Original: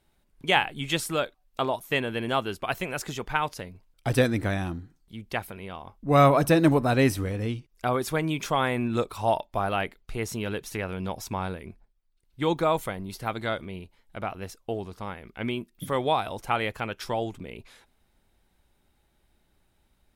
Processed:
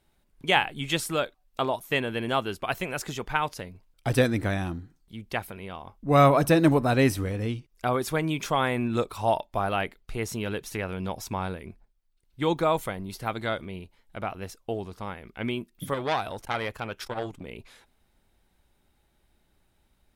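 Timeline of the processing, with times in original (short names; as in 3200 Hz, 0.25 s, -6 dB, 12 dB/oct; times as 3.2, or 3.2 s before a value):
15.94–17.47 core saturation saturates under 1800 Hz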